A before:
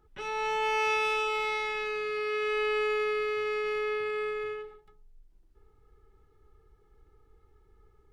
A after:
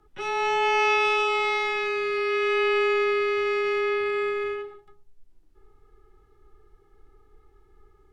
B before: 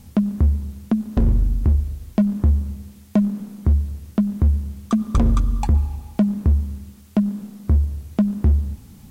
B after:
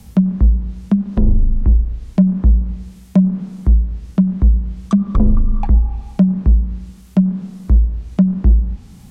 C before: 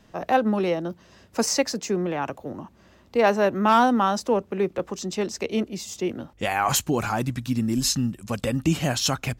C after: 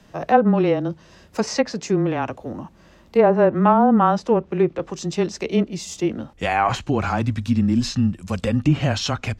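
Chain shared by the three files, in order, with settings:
treble ducked by the level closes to 710 Hz, closed at -13 dBFS; frequency shift -17 Hz; harmonic-percussive split harmonic +5 dB; gain +1 dB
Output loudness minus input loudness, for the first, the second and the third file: +6.0, +4.5, +3.5 LU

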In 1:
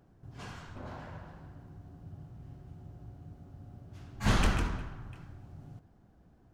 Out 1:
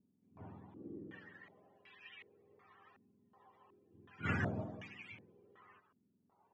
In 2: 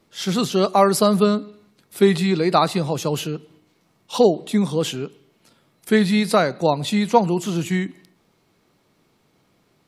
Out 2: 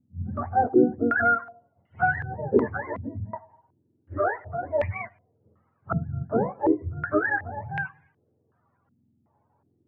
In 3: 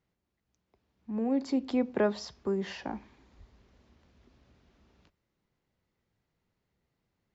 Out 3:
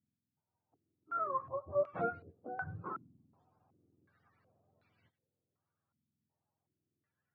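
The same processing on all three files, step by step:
spectrum mirrored in octaves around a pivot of 540 Hz; stepped low-pass 2.7 Hz 240–2400 Hz; gain -8 dB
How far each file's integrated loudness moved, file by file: -9.0, -6.5, -6.5 LU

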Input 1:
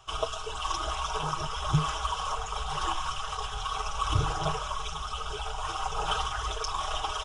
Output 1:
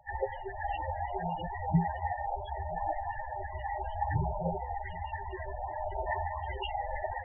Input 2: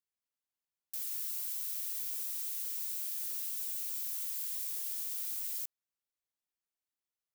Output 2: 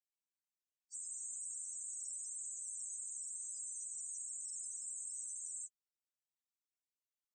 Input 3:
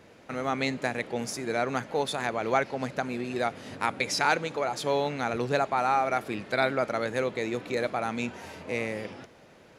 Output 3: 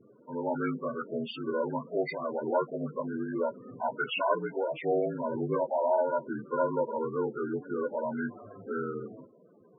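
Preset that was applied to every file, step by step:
inharmonic rescaling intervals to 79%; loudest bins only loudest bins 16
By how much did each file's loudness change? -4.0, -7.5, -3.0 LU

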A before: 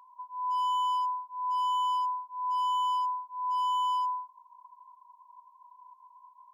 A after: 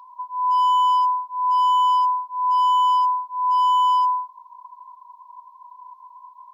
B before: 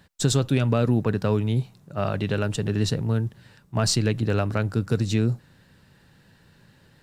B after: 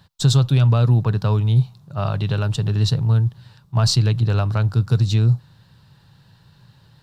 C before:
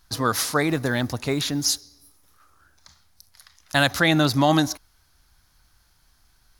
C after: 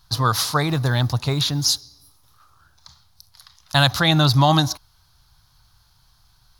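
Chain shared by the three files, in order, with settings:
ten-band EQ 125 Hz +10 dB, 250 Hz -7 dB, 500 Hz -4 dB, 1000 Hz +6 dB, 2000 Hz -7 dB, 4000 Hz +7 dB, 8000 Hz -4 dB; match loudness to -19 LUFS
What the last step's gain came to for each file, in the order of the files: +7.0, +0.5, +1.5 dB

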